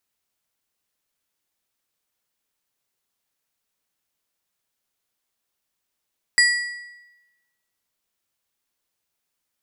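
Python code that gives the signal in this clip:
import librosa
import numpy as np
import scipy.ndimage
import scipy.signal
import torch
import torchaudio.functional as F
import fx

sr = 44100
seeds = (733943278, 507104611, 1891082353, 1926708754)

y = fx.strike_metal(sr, length_s=1.55, level_db=-12, body='plate', hz=1940.0, decay_s=1.06, tilt_db=4.5, modes=4)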